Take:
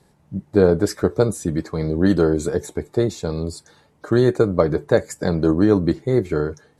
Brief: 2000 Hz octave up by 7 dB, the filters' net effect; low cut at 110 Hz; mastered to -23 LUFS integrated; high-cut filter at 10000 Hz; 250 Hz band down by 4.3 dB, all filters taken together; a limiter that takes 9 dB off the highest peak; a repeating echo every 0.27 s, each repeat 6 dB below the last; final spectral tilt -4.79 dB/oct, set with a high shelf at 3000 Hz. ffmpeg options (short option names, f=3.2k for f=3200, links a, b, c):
-af "highpass=110,lowpass=10k,equalizer=f=250:t=o:g=-6.5,equalizer=f=2k:t=o:g=7,highshelf=f=3k:g=7.5,alimiter=limit=-12dB:level=0:latency=1,aecho=1:1:270|540|810|1080|1350|1620:0.501|0.251|0.125|0.0626|0.0313|0.0157,volume=0.5dB"